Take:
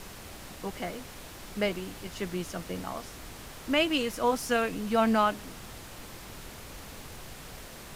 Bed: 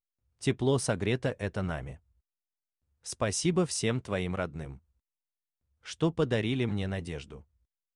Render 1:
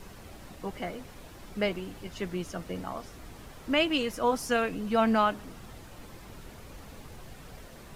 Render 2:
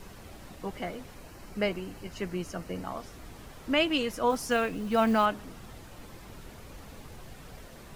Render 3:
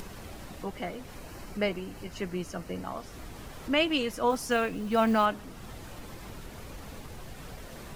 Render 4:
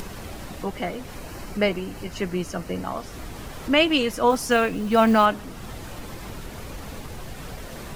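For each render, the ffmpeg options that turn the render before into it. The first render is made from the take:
-af "afftdn=nr=8:nf=-46"
-filter_complex "[0:a]asettb=1/sr,asplit=3[a][b][c];[a]atrim=end=1.164[d];[b]atrim=start=1.16:end=2.84,asetpts=PTS-STARTPTS,afade=t=in:d=0.004:c=qsin,afade=t=out:st=1.676:d=0.004:c=qsin,bandreject=f=3.5k:w=6.1[e];[c]atrim=start=2.836[f];[d][e]acrossfade=d=0.004:c1=hsin:c2=qsin[g];[g][f]acrossfade=d=0.004:c1=qsin:c2=hsin,asettb=1/sr,asplit=3[h][i][j];[h]atrim=end=4.304[k];[i]atrim=start=4.3:end=5.26,asetpts=PTS-STARTPTS,afade=t=in:d=0.004:c=qsin,afade=t=out:st=0.956:d=0.004:c=qsin,acrusher=bits=7:mode=log:mix=0:aa=0.000001[l];[j]atrim=start=5.256[m];[k][l]acrossfade=d=0.004:c1=hsin:c2=qsin[n];[n][m]acrossfade=d=0.004:c1=qsin:c2=hsin"
-af "acompressor=mode=upward:threshold=-36dB:ratio=2.5"
-af "volume=7dB"

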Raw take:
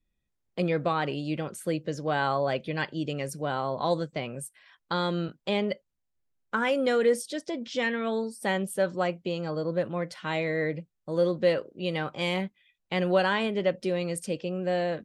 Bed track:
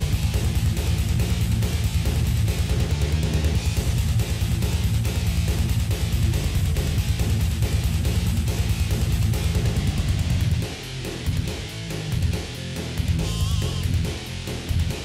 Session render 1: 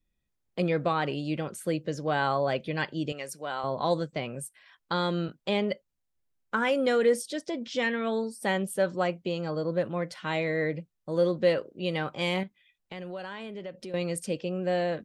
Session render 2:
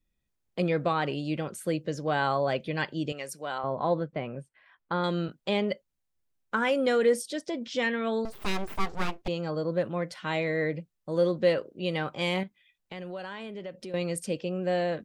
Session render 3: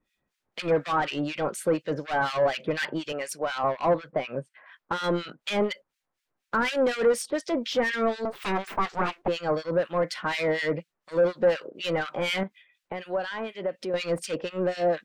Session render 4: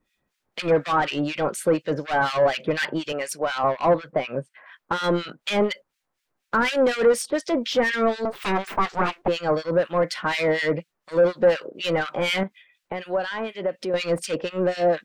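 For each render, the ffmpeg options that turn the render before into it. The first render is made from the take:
-filter_complex "[0:a]asettb=1/sr,asplit=3[a][b][c];[a]atrim=end=3.124[d];[b]atrim=start=3.12:end=3.64,asetpts=PTS-STARTPTS,afade=t=in:d=0.004:c=qsin,afade=t=out:st=0.516:d=0.004:c=qsin,highpass=f=820:p=1[e];[c]atrim=start=3.636[f];[d][e]acrossfade=d=0.004:c1=hsin:c2=qsin[g];[g][f]acrossfade=d=0.004:c1=qsin:c2=hsin,asettb=1/sr,asplit=3[h][i][j];[h]atrim=end=12.434[k];[i]atrim=start=12.43:end=13.94,asetpts=PTS-STARTPTS,afade=t=in:d=0.004:c=qsin,afade=t=out:st=1.506:d=0.004:c=qsin,acompressor=threshold=-40dB:ratio=3:attack=3.2:release=140:knee=1:detection=peak[l];[j]atrim=start=13.936[m];[k][l]acrossfade=d=0.004:c1=hsin:c2=qsin[n];[n][m]acrossfade=d=0.004:c1=qsin:c2=hsin"
-filter_complex "[0:a]asettb=1/sr,asplit=3[a][b][c];[a]atrim=end=3.584[d];[b]atrim=start=3.58:end=5.04,asetpts=PTS-STARTPTS,afade=t=in:d=0.004:c=qsin,afade=t=out:st=1.456:d=0.004:c=qsin,lowpass=2k[e];[c]atrim=start=5.036[f];[d][e]acrossfade=d=0.004:c1=hsin:c2=qsin[g];[g][f]acrossfade=d=0.004:c1=qsin:c2=hsin,asettb=1/sr,asplit=3[h][i][j];[h]atrim=end=8.254[k];[i]atrim=start=8.25:end=9.28,asetpts=PTS-STARTPTS,afade=t=in:d=0.004:c=qsin,afade=t=out:st=1.026:d=0.004:c=qsin,aeval=exprs='abs(val(0))':c=same[l];[j]atrim=start=9.276[m];[k][l]acrossfade=d=0.004:c1=hsin:c2=qsin[n];[n][m]acrossfade=d=0.004:c1=qsin:c2=hsin"
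-filter_complex "[0:a]asplit=2[a][b];[b]highpass=f=720:p=1,volume=23dB,asoftclip=type=tanh:threshold=-12.5dB[c];[a][c]amix=inputs=2:normalize=0,lowpass=f=2.5k:p=1,volume=-6dB,acrossover=split=1600[d][e];[d]aeval=exprs='val(0)*(1-1/2+1/2*cos(2*PI*4.1*n/s))':c=same[f];[e]aeval=exprs='val(0)*(1-1/2-1/2*cos(2*PI*4.1*n/s))':c=same[g];[f][g]amix=inputs=2:normalize=0"
-af "volume=4dB"

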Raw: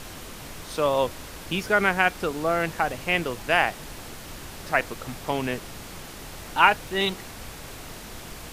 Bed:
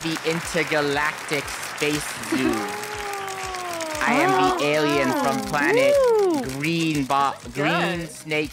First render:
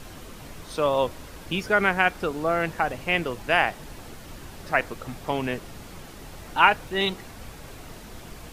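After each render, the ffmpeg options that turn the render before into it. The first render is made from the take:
-af "afftdn=nr=6:nf=-41"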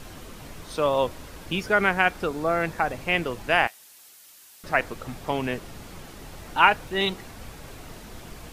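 -filter_complex "[0:a]asettb=1/sr,asplit=3[a][b][c];[a]atrim=end=2.274[d];[b]atrim=start=2.27:end=3.05,asetpts=PTS-STARTPTS,afade=t=in:d=0.004:c=qsin,afade=t=out:st=0.776:d=0.004:c=qsin,bandreject=f=2.9k:w=12[e];[c]atrim=start=3.046[f];[d][e]acrossfade=d=0.004:c1=hsin:c2=qsin[g];[g][f]acrossfade=d=0.004:c1=qsin:c2=hsin,asettb=1/sr,asplit=3[h][i][j];[h]atrim=end=3.674[k];[i]atrim=start=3.67:end=4.64,asetpts=PTS-STARTPTS,afade=t=in:d=0.004:c=qsin,afade=t=out:st=0.966:d=0.004:c=qsin,aderivative[l];[j]atrim=start=4.636[m];[k][l]acrossfade=d=0.004:c1=hsin:c2=qsin[n];[n][m]acrossfade=d=0.004:c1=qsin:c2=hsin"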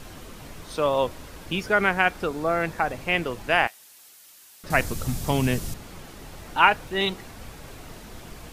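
-filter_complex "[0:a]asettb=1/sr,asplit=3[a][b][c];[a]atrim=end=4.704[d];[b]atrim=start=4.7:end=5.74,asetpts=PTS-STARTPTS,afade=t=in:d=0.004:c=qsin,afade=t=out:st=1.036:d=0.004:c=qsin,bass=f=250:g=12,treble=f=4k:g=14[e];[c]atrim=start=5.736[f];[d][e]acrossfade=d=0.004:c1=hsin:c2=qsin[g];[g][f]acrossfade=d=0.004:c1=qsin:c2=hsin"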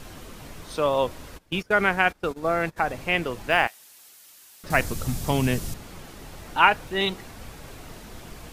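-filter_complex "[0:a]asplit=3[a][b][c];[a]afade=t=out:st=1.37:d=0.02[d];[b]agate=range=-21dB:threshold=-31dB:ratio=16:release=100:detection=peak,afade=t=in:st=1.37:d=0.02,afade=t=out:st=2.76:d=0.02[e];[c]afade=t=in:st=2.76:d=0.02[f];[d][e][f]amix=inputs=3:normalize=0,asettb=1/sr,asplit=3[g][h][i];[g]atrim=end=3.494[j];[h]atrim=start=3.49:end=4.79,asetpts=PTS-STARTPTS,afade=t=in:d=0.004:c=qsin,afade=t=out:st=1.296:d=0.004:c=qsin,acrusher=bits=8:mode=log:mix=0:aa=0.000001[k];[i]atrim=start=4.786[l];[j][k]acrossfade=d=0.004:c1=hsin:c2=qsin[m];[m][l]acrossfade=d=0.004:c1=qsin:c2=hsin"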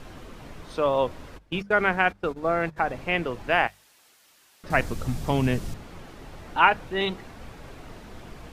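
-af "lowpass=f=2.7k:p=1,bandreject=f=50:t=h:w=6,bandreject=f=100:t=h:w=6,bandreject=f=150:t=h:w=6,bandreject=f=200:t=h:w=6"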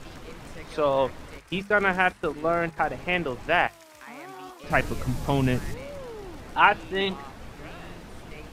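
-filter_complex "[1:a]volume=-23dB[a];[0:a][a]amix=inputs=2:normalize=0"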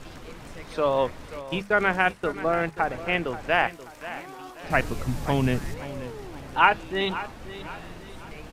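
-af "aecho=1:1:532|1064|1596|2128:0.188|0.0753|0.0301|0.0121"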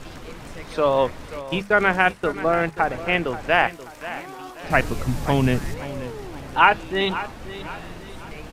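-af "volume=4dB,alimiter=limit=-1dB:level=0:latency=1"

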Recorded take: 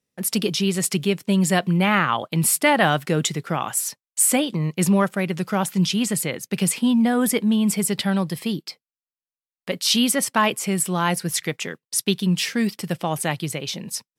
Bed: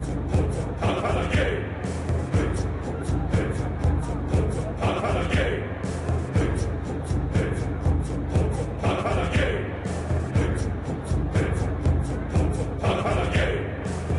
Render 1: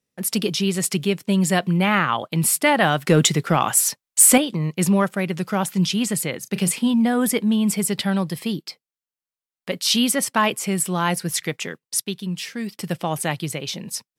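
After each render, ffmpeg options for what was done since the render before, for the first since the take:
-filter_complex "[0:a]asettb=1/sr,asplit=3[a][b][c];[a]atrim=end=3.064[d];[b]atrim=start=3.06:end=4.38,asetpts=PTS-STARTPTS,afade=t=in:d=0.004:c=qsin,afade=t=out:st=1.316:d=0.004:c=qsin,acontrast=66[e];[c]atrim=start=4.376[f];[d][e]acrossfade=d=0.004:c1=hsin:c2=qsin[g];[g][f]acrossfade=d=0.004:c1=qsin:c2=hsin,asettb=1/sr,asplit=3[h][i][j];[h]atrim=end=6.394[k];[i]atrim=start=6.39:end=6.94,asetpts=PTS-STARTPTS,afade=t=in:d=0.004:c=qsin,afade=t=out:st=0.546:d=0.004:c=qsin,asplit=2[l][m];[m]adelay=34,volume=-14dB[n];[l][n]amix=inputs=2:normalize=0,atrim=end_sample=24255[o];[j]atrim=start=6.936[p];[k][o]acrossfade=d=0.004:c1=hsin:c2=qsin[q];[q][p]acrossfade=d=0.004:c1=qsin:c2=hsin,asplit=3[r][s][t];[r]atrim=end=12.002[u];[s]atrim=start=11.998:end=12.792,asetpts=PTS-STARTPTS,volume=-7dB[v];[t]atrim=start=12.788[w];[u][v]acrossfade=d=0.004:c1=hsin:c2=hsin[x];[x][w]acrossfade=d=0.004:c1=hsin:c2=hsin"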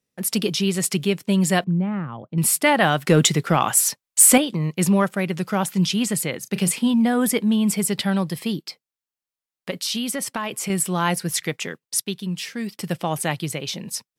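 -filter_complex "[0:a]asettb=1/sr,asplit=3[a][b][c];[a]atrim=end=1.644[d];[b]atrim=start=1.64:end=2.38,asetpts=PTS-STARTPTS,afade=t=in:d=0.004:c=qsin,afade=t=out:st=0.736:d=0.004:c=qsin,bandpass=f=120:t=q:w=0.71[e];[c]atrim=start=2.376[f];[d][e]acrossfade=d=0.004:c1=hsin:c2=qsin[g];[g][f]acrossfade=d=0.004:c1=qsin:c2=hsin,asettb=1/sr,asplit=3[h][i][j];[h]atrim=end=9.704[k];[i]atrim=start=9.7:end=10.7,asetpts=PTS-STARTPTS,afade=t=in:d=0.004:c=qsin,afade=t=out:st=0.996:d=0.004:c=qsin,acompressor=threshold=-22dB:ratio=6:attack=3.2:release=140:knee=1:detection=peak[l];[j]atrim=start=10.696[m];[k][l]acrossfade=d=0.004:c1=hsin:c2=qsin[n];[n][m]acrossfade=d=0.004:c1=qsin:c2=hsin"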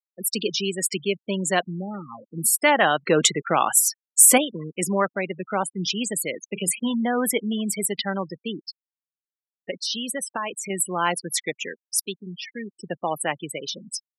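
-af "afftfilt=real='re*gte(hypot(re,im),0.0631)':imag='im*gte(hypot(re,im),0.0631)':win_size=1024:overlap=0.75,highpass=320"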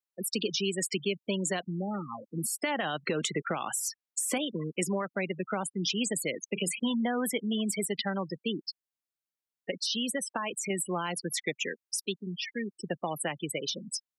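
-filter_complex "[0:a]alimiter=limit=-14dB:level=0:latency=1:release=114,acrossover=split=260|3000|7100[a][b][c][d];[a]acompressor=threshold=-35dB:ratio=4[e];[b]acompressor=threshold=-31dB:ratio=4[f];[c]acompressor=threshold=-35dB:ratio=4[g];[d]acompressor=threshold=-39dB:ratio=4[h];[e][f][g][h]amix=inputs=4:normalize=0"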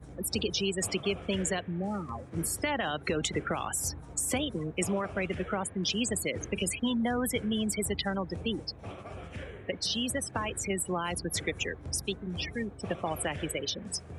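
-filter_complex "[1:a]volume=-19dB[a];[0:a][a]amix=inputs=2:normalize=0"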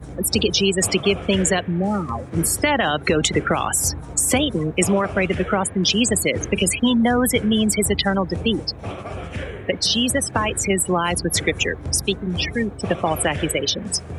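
-af "volume=12dB"

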